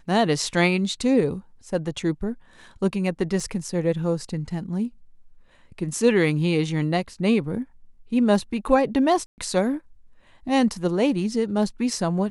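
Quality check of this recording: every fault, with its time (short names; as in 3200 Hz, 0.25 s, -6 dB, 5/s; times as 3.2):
3.4 gap 2.4 ms
9.26–9.38 gap 0.119 s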